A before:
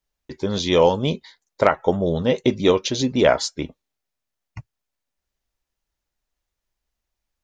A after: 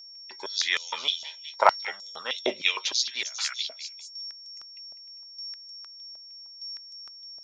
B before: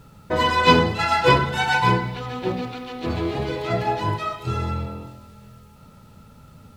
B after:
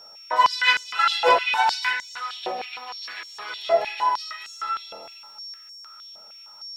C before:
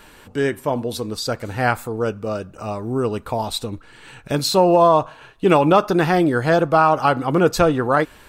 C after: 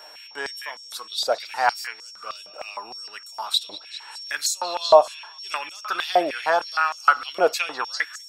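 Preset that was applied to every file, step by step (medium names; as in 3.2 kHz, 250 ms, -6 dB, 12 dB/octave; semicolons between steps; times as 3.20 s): repeats whose band climbs or falls 200 ms, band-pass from 3 kHz, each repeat 0.7 oct, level -6 dB; whistle 5.5 kHz -40 dBFS; step-sequenced high-pass 6.5 Hz 650–6700 Hz; trim -4 dB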